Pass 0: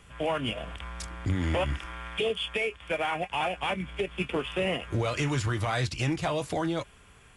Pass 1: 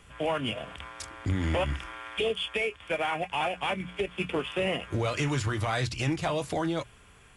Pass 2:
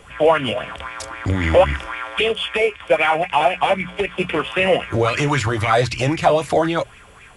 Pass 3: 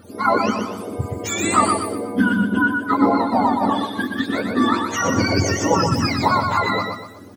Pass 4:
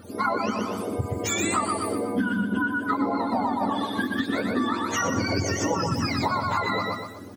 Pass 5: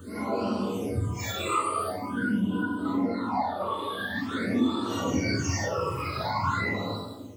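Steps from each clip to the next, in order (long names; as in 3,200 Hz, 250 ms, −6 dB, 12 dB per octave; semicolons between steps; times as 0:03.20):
mains-hum notches 60/120/180 Hz
auto-filter bell 3.8 Hz 490–2,400 Hz +12 dB; level +7.5 dB
frequency axis turned over on the octave scale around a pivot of 810 Hz; repeating echo 122 ms, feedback 38%, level −5 dB
downward compressor, threshold −22 dBFS, peak gain reduction 11.5 dB
random phases in long frames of 200 ms; all-pass phaser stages 8, 0.46 Hz, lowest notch 220–2,000 Hz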